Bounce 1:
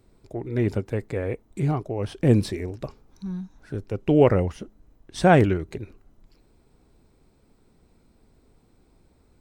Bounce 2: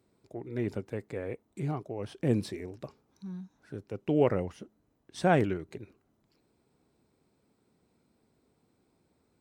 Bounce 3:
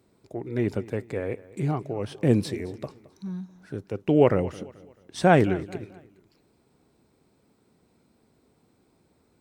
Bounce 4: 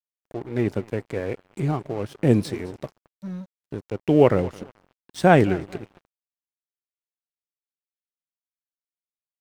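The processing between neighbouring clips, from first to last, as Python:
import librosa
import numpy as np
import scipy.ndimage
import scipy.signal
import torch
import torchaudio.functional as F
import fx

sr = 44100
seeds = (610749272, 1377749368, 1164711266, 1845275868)

y1 = scipy.signal.sosfilt(scipy.signal.butter(2, 120.0, 'highpass', fs=sr, output='sos'), x)
y1 = F.gain(torch.from_numpy(y1), -8.0).numpy()
y2 = fx.echo_feedback(y1, sr, ms=218, feedback_pct=39, wet_db=-19.5)
y2 = F.gain(torch.from_numpy(y2), 6.5).numpy()
y3 = np.sign(y2) * np.maximum(np.abs(y2) - 10.0 ** (-43.5 / 20.0), 0.0)
y3 = F.gain(torch.from_numpy(y3), 3.0).numpy()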